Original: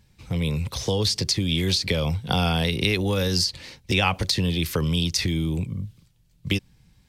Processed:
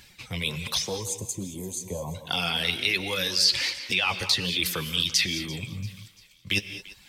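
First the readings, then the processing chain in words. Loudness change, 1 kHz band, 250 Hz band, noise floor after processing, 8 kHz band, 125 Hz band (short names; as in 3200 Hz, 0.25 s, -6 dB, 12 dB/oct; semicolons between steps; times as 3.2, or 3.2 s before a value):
-2.0 dB, -5.0 dB, -10.0 dB, -55 dBFS, +1.5 dB, -11.5 dB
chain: reverse; compressor 12:1, threshold -33 dBFS, peak gain reduction 17 dB; reverse; reverb removal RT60 0.76 s; spectral gain 0.86–2.14, 1100–6100 Hz -29 dB; bell 2400 Hz +7 dB 1.9 oct; in parallel at -0.5 dB: limiter -24 dBFS, peak gain reduction 7 dB; on the sum: tilt +2 dB/oct; flange 1.3 Hz, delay 2.7 ms, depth 8.4 ms, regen +37%; thinning echo 0.342 s, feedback 47%, high-pass 570 Hz, level -19.5 dB; non-linear reverb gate 0.24 s rising, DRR 10.5 dB; gain +6 dB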